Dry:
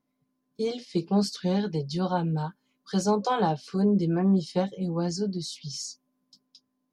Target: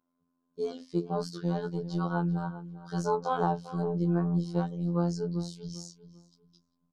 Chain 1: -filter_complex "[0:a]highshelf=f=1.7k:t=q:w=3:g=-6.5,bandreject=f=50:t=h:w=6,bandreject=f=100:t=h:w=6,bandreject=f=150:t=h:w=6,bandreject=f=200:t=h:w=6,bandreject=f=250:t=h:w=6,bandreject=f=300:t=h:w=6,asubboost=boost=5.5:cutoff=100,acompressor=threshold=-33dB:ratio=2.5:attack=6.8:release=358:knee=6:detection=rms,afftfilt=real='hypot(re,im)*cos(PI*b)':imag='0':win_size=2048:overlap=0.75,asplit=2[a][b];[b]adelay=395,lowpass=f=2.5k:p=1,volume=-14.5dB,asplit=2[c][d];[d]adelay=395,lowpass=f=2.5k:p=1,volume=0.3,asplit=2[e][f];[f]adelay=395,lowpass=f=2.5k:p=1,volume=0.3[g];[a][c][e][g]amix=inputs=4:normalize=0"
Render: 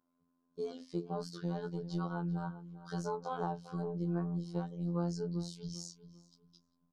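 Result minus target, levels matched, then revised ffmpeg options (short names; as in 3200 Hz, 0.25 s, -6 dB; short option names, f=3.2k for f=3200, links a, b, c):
compressor: peak gain reduction +10.5 dB
-filter_complex "[0:a]highshelf=f=1.7k:t=q:w=3:g=-6.5,bandreject=f=50:t=h:w=6,bandreject=f=100:t=h:w=6,bandreject=f=150:t=h:w=6,bandreject=f=200:t=h:w=6,bandreject=f=250:t=h:w=6,bandreject=f=300:t=h:w=6,asubboost=boost=5.5:cutoff=100,afftfilt=real='hypot(re,im)*cos(PI*b)':imag='0':win_size=2048:overlap=0.75,asplit=2[a][b];[b]adelay=395,lowpass=f=2.5k:p=1,volume=-14.5dB,asplit=2[c][d];[d]adelay=395,lowpass=f=2.5k:p=1,volume=0.3,asplit=2[e][f];[f]adelay=395,lowpass=f=2.5k:p=1,volume=0.3[g];[a][c][e][g]amix=inputs=4:normalize=0"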